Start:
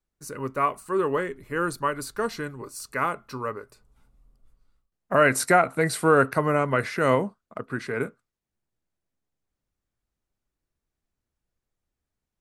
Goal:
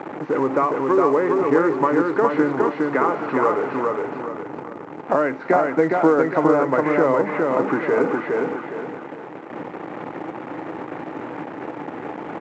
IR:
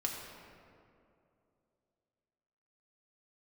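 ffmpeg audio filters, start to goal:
-af "aeval=exprs='val(0)+0.5*0.0335*sgn(val(0))':channel_layout=same,acompressor=threshold=-26dB:ratio=8,highpass=frequency=170:width=0.5412,highpass=frequency=170:width=1.3066,equalizer=frequency=210:width_type=q:width=4:gain=-6,equalizer=frequency=310:width_type=q:width=4:gain=9,equalizer=frequency=490:width_type=q:width=4:gain=5,equalizer=frequency=850:width_type=q:width=4:gain=8,equalizer=frequency=1600:width_type=q:width=4:gain=-3,lowpass=frequency=2000:width=0.5412,lowpass=frequency=2000:width=1.3066,aecho=1:1:411|822|1233|1644|2055:0.708|0.262|0.0969|0.0359|0.0133,volume=7.5dB" -ar 16000 -c:a pcm_alaw

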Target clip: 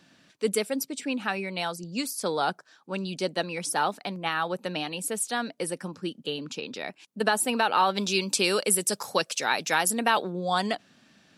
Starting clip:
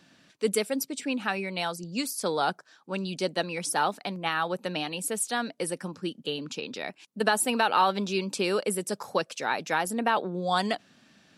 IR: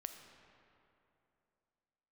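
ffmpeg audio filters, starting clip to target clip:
-filter_complex "[0:a]asplit=3[link_01][link_02][link_03];[link_01]afade=type=out:start_time=7.96:duration=0.02[link_04];[link_02]highshelf=frequency=2500:gain=11,afade=type=in:start_time=7.96:duration=0.02,afade=type=out:start_time=10.31:duration=0.02[link_05];[link_03]afade=type=in:start_time=10.31:duration=0.02[link_06];[link_04][link_05][link_06]amix=inputs=3:normalize=0"

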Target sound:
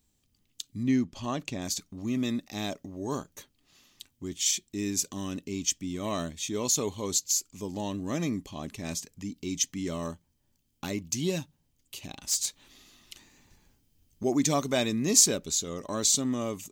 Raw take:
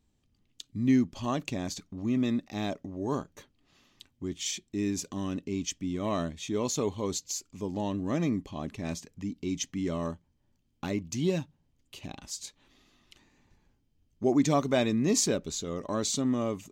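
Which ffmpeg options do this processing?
ffmpeg -i in.wav -filter_complex "[0:a]crystalizer=i=3:c=0,asettb=1/sr,asplit=3[link_01][link_02][link_03];[link_01]atrim=end=0.834[link_04];[link_02]atrim=start=0.83:end=1.62,asetpts=PTS-STARTPTS,afade=type=in:duration=0.004:curve=qsin,afade=type=out:start_time=0.786:duration=0.004:curve=qsin,aemphasis=mode=reproduction:type=50kf[link_05];[link_03]atrim=start=1.616[link_06];[link_04][link_05]acrossfade=duration=0.004:curve1=hsin:curve2=qsin[link_07];[link_07][link_06]acrossfade=duration=0.004:curve1=qsin:curve2=hsin,asettb=1/sr,asplit=3[link_08][link_09][link_10];[link_08]atrim=end=12.274[link_11];[link_09]atrim=start=12.27:end=14.23,asetpts=PTS-STARTPTS,afade=type=in:duration=0.004:curve=qsin,afade=type=out:start_time=1.956:duration=0.004:curve=qsin,aeval=exprs='0.2*(cos(1*acos(clip(val(0)/0.2,-1,1)))-cos(1*PI/2))+0.0316*(cos(5*acos(clip(val(0)/0.2,-1,1)))-cos(5*PI/2))':channel_layout=same[link_12];[link_10]atrim=start=14.226[link_13];[link_11][link_12]acrossfade=duration=0.004:curve1=hsin:curve2=qsin[link_14];[link_14][link_13]acrossfade=duration=0.004:curve1=qsin:curve2=hsin,volume=-2dB" out.wav

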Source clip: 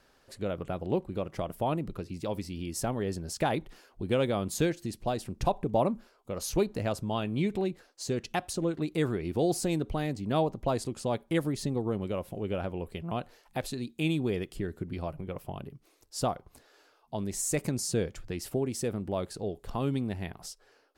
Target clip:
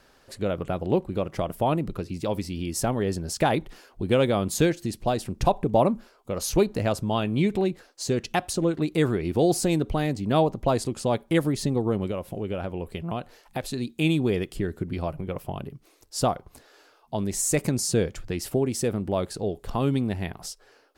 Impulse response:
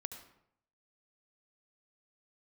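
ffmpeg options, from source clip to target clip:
-filter_complex "[0:a]asettb=1/sr,asplit=3[link_01][link_02][link_03];[link_01]atrim=end=12.104[link_04];[link_02]atrim=start=12.1:end=13.74,asetpts=PTS-STARTPTS,afade=type=in:duration=0.004:curve=qsin,afade=type=out:start_time=1.636:duration=0.004:curve=qsin,acompressor=threshold=-35dB:ratio=2[link_05];[link_03]atrim=start=13.736[link_06];[link_04][link_05]acrossfade=duration=0.004:curve1=hsin:curve2=qsin[link_07];[link_07][link_06]acrossfade=duration=0.004:curve1=qsin:curve2=hsin,volume=6dB"

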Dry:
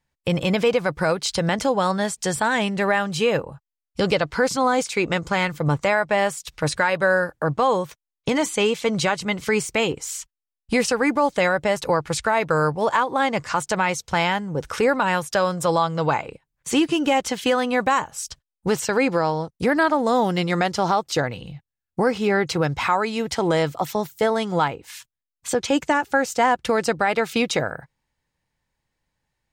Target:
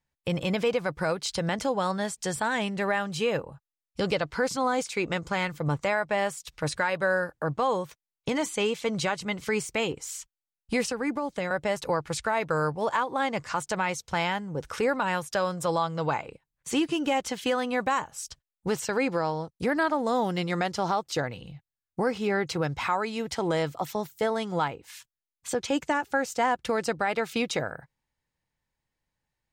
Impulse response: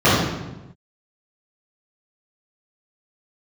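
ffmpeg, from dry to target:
-filter_complex "[0:a]asettb=1/sr,asplit=3[link_01][link_02][link_03];[link_01]atrim=end=10.864[link_04];[link_02]atrim=start=10.86:end=11.51,asetpts=PTS-STARTPTS,afade=type=in:duration=0.004:curve=qsin,afade=type=out:start_time=0.646:duration=0.004:curve=qsin,acrossover=split=350[link_05][link_06];[link_06]acompressor=threshold=-26dB:ratio=2.5[link_07];[link_05][link_07]amix=inputs=2:normalize=0[link_08];[link_03]atrim=start=11.506[link_09];[link_04][link_08]acrossfade=duration=0.004:curve1=hsin:curve2=qsin[link_10];[link_10][link_09]acrossfade=duration=0.004:curve1=qsin:curve2=hsin,volume=-6.5dB"

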